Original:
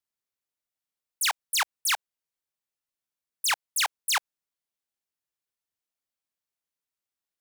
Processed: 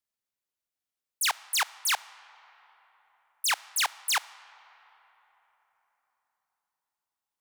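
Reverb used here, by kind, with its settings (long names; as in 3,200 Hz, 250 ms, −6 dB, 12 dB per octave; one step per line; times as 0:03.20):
comb and all-pass reverb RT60 4.3 s, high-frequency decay 0.5×, pre-delay 0 ms, DRR 18 dB
level −1 dB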